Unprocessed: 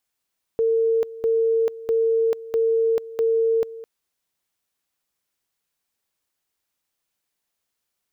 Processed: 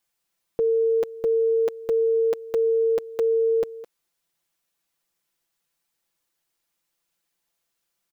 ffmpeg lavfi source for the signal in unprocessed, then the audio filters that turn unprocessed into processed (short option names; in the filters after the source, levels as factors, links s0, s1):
-f lavfi -i "aevalsrc='pow(10,(-16.5-17*gte(mod(t,0.65),0.44))/20)*sin(2*PI*453*t)':d=3.25:s=44100"
-af "aecho=1:1:5.9:0.65"